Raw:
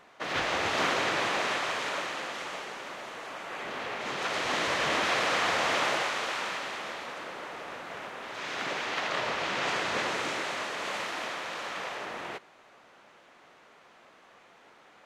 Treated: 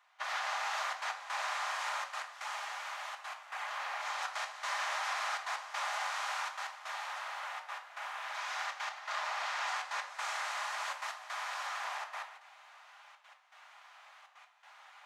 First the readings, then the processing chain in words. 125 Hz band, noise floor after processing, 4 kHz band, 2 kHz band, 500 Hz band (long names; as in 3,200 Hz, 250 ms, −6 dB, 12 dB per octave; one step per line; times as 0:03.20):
below −40 dB, −59 dBFS, −8.5 dB, −6.5 dB, −15.5 dB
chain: Butterworth high-pass 760 Hz 36 dB per octave
dynamic equaliser 2,900 Hz, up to −7 dB, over −46 dBFS, Q 1
downward compressor, threshold −34 dBFS, peak gain reduction 7.5 dB
gate pattern "..xxxxxxxx.x" 162 BPM −12 dB
rectangular room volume 360 cubic metres, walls furnished, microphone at 1.3 metres